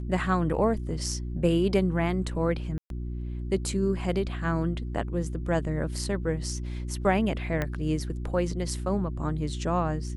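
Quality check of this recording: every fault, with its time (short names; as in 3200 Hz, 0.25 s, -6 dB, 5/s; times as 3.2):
hum 60 Hz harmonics 6 -33 dBFS
2.78–2.9 gap 0.122 s
7.62 pop -15 dBFS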